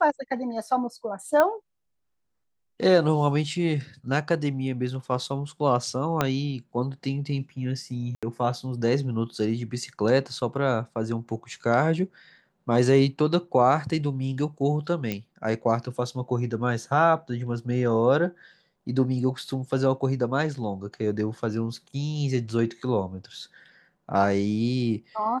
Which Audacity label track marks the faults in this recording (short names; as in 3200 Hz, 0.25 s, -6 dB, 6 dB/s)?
1.400000	1.400000	pop -9 dBFS
6.210000	6.210000	pop -8 dBFS
8.150000	8.230000	gap 76 ms
15.120000	15.120000	pop -15 dBFS